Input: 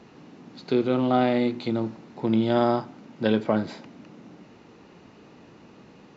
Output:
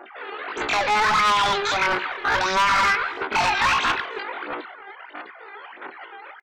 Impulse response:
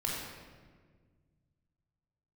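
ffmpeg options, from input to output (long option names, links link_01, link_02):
-filter_complex "[0:a]agate=range=-33dB:threshold=-41dB:ratio=3:detection=peak,acrossover=split=500|670[link_01][link_02][link_03];[link_01]acompressor=threshold=-40dB:ratio=5[link_04];[link_04][link_02][link_03]amix=inputs=3:normalize=0,alimiter=limit=-23dB:level=0:latency=1:release=30,acrossover=split=220 2400:gain=0.126 1 0.0631[link_05][link_06][link_07];[link_05][link_06][link_07]amix=inputs=3:normalize=0,aphaser=in_gain=1:out_gain=1:delay=4.2:decay=0.7:speed=1.6:type=sinusoidal,asetrate=42336,aresample=44100,asplit=2[link_08][link_09];[link_09]highpass=frequency=720:poles=1,volume=33dB,asoftclip=type=tanh:threshold=-13dB[link_10];[link_08][link_10]amix=inputs=2:normalize=0,lowpass=frequency=1400:poles=1,volume=-6dB,equalizer=frequency=320:width=1.6:gain=-12,afftdn=noise_reduction=28:noise_floor=-45,asoftclip=type=hard:threshold=-21dB,asplit=2[link_11][link_12];[link_12]adelay=297.4,volume=-25dB,highshelf=frequency=4000:gain=-6.69[link_13];[link_11][link_13]amix=inputs=2:normalize=0,asetrate=76340,aresample=44100,atempo=0.577676,volume=5dB"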